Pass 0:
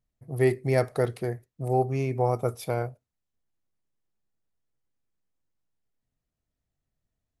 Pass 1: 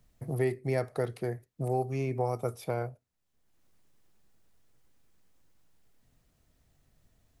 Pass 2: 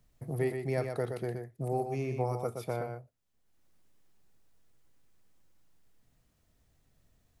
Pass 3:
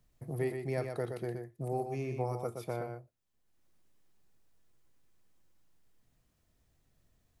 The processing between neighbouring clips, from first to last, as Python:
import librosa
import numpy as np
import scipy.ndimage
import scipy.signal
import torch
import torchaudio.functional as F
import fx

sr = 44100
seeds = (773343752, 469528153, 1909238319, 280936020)

y1 = fx.band_squash(x, sr, depth_pct=70)
y1 = F.gain(torch.from_numpy(y1), -5.5).numpy()
y2 = y1 + 10.0 ** (-6.0 / 20.0) * np.pad(y1, (int(122 * sr / 1000.0), 0))[:len(y1)]
y2 = F.gain(torch.from_numpy(y2), -2.5).numpy()
y3 = fx.comb_fb(y2, sr, f0_hz=350.0, decay_s=0.2, harmonics='odd', damping=0.0, mix_pct=50)
y3 = F.gain(torch.from_numpy(y3), 3.0).numpy()